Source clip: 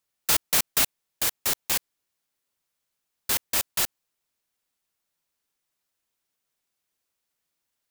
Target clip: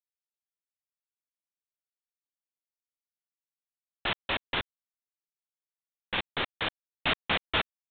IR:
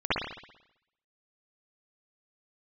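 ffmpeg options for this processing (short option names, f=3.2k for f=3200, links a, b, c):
-af "areverse,aresample=8000,acrusher=bits=6:mix=0:aa=0.000001,aresample=44100,volume=2dB"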